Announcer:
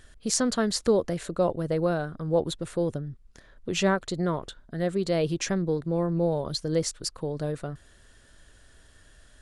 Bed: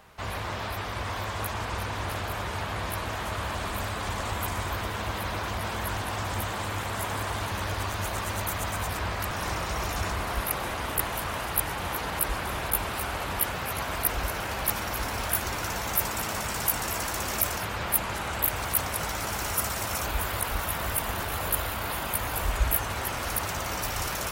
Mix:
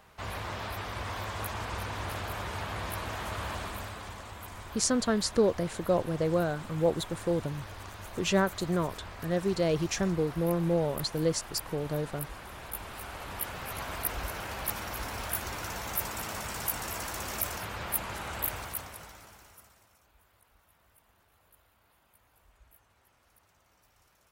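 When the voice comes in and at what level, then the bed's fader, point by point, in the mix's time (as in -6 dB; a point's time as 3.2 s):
4.50 s, -2.0 dB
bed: 3.53 s -4 dB
4.28 s -13.5 dB
12.5 s -13.5 dB
13.83 s -6 dB
18.51 s -6 dB
20 s -36 dB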